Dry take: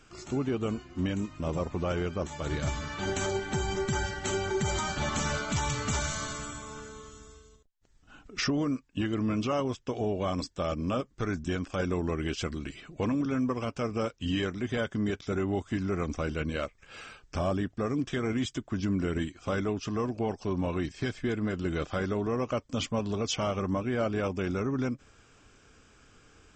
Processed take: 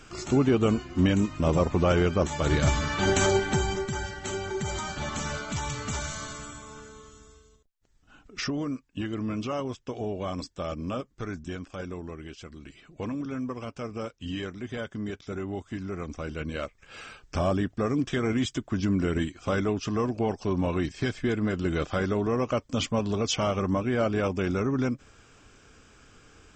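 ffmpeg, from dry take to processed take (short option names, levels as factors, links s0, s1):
-af "volume=14.1,afade=t=out:st=3.34:d=0.54:silence=0.316228,afade=t=out:st=10.92:d=1.51:silence=0.334965,afade=t=in:st=12.43:d=0.58:silence=0.421697,afade=t=in:st=16.16:d=1.19:silence=0.421697"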